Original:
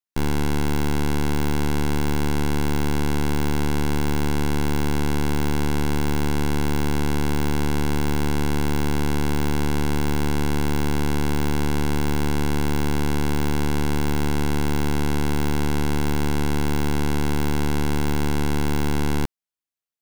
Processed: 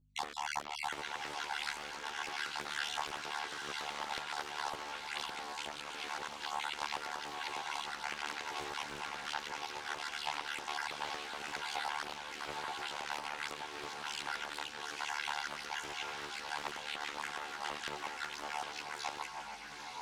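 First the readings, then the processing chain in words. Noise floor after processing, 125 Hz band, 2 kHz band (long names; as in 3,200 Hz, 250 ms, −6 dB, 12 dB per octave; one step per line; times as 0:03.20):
−47 dBFS, −39.5 dB, −7.5 dB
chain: time-frequency cells dropped at random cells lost 57%
brickwall limiter −24 dBFS, peak gain reduction 8.5 dB
downward compressor, threshold −34 dBFS, peak gain reduction 7.5 dB
band-pass filter 710–6,500 Hz
mains hum 50 Hz, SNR 26 dB
feedback delay with all-pass diffusion 885 ms, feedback 48%, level −4.5 dB
multi-voice chorus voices 2, 0.87 Hz, delay 13 ms, depth 2.1 ms
highs frequency-modulated by the lows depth 0.59 ms
level +6 dB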